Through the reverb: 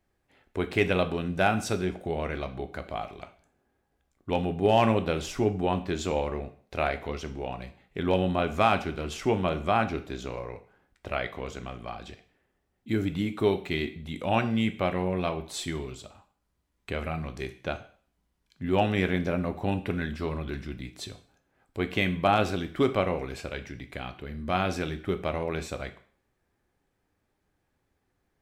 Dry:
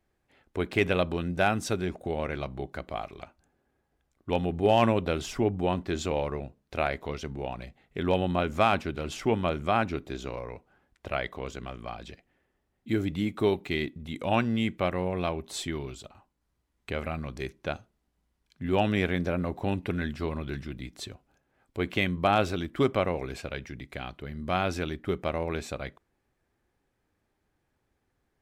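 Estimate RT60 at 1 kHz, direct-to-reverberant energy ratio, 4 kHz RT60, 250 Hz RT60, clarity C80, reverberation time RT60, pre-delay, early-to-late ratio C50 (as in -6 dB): 0.50 s, 8.0 dB, 0.45 s, 0.45 s, 18.0 dB, 0.50 s, 8 ms, 14.5 dB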